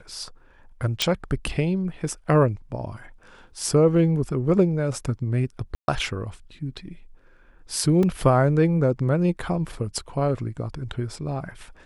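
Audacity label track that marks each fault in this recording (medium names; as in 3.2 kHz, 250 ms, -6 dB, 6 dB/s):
1.020000	1.020000	pop -6 dBFS
5.750000	5.880000	dropout 131 ms
8.030000	8.030000	dropout 2.3 ms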